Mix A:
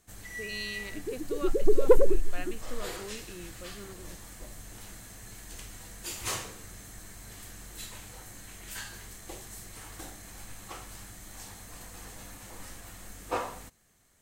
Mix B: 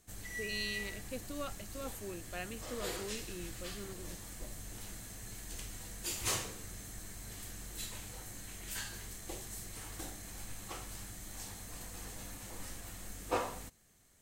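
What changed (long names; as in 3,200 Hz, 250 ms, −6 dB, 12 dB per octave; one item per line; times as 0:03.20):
second sound: muted
master: add parametric band 1,200 Hz −3.5 dB 2 octaves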